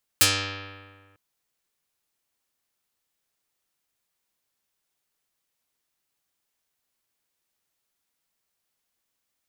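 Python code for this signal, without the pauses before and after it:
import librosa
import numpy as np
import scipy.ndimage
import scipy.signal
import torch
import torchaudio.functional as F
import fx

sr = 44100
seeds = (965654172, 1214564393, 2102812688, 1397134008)

y = fx.pluck(sr, length_s=0.95, note=43, decay_s=1.7, pick=0.48, brightness='dark')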